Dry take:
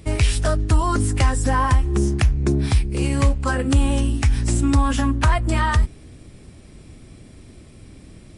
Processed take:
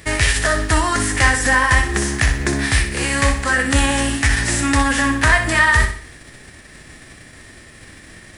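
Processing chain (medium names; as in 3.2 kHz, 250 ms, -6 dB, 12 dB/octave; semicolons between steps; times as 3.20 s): formants flattened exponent 0.6; peaking EQ 1.8 kHz +14.5 dB 0.39 oct; flutter echo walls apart 10.6 m, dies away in 0.46 s; trim -1 dB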